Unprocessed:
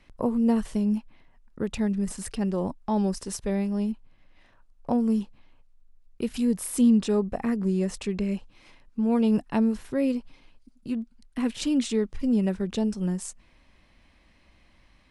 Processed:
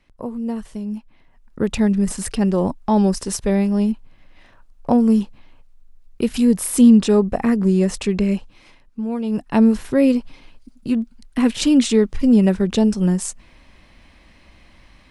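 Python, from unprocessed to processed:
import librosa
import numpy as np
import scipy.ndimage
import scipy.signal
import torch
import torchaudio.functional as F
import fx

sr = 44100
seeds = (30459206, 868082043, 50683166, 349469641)

y = fx.gain(x, sr, db=fx.line((0.87, -3.0), (1.64, 9.0), (8.31, 9.0), (9.23, -2.5), (9.63, 10.0)))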